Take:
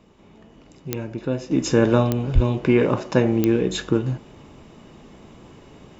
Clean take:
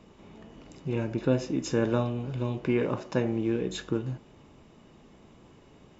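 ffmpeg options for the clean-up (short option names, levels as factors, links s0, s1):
-filter_complex "[0:a]adeclick=t=4,asplit=3[s0][s1][s2];[s0]afade=t=out:st=2.34:d=0.02[s3];[s1]highpass=f=140:w=0.5412,highpass=f=140:w=1.3066,afade=t=in:st=2.34:d=0.02,afade=t=out:st=2.46:d=0.02[s4];[s2]afade=t=in:st=2.46:d=0.02[s5];[s3][s4][s5]amix=inputs=3:normalize=0,asetnsamples=n=441:p=0,asendcmd='1.51 volume volume -9dB',volume=1"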